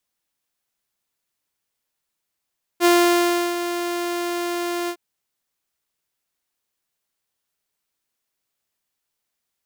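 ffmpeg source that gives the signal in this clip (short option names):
-f lavfi -i "aevalsrc='0.335*(2*mod(348*t,1)-1)':d=2.16:s=44100,afade=t=in:d=0.049,afade=t=out:st=0.049:d=0.691:silence=0.282,afade=t=out:st=2.09:d=0.07"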